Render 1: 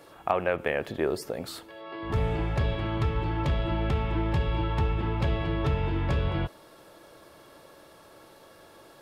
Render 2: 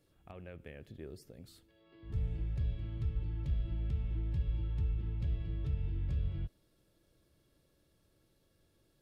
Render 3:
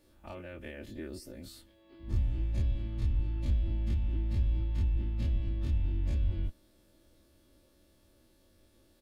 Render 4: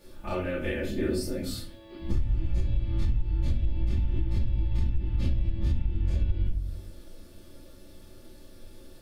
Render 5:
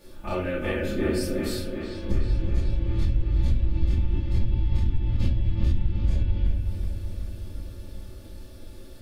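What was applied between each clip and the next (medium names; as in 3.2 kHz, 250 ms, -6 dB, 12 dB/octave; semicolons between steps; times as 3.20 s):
amplifier tone stack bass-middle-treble 10-0-1; trim +2 dB
every event in the spectrogram widened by 60 ms; comb 3.4 ms, depth 89%; harmonic-percussive split harmonic -7 dB; trim +5 dB
reverberation RT60 0.45 s, pre-delay 5 ms, DRR -4 dB; compression 10:1, threshold -28 dBFS, peak gain reduction 15 dB; trim +7 dB
feedback echo behind a low-pass 373 ms, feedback 65%, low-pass 3.9 kHz, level -6.5 dB; trim +2.5 dB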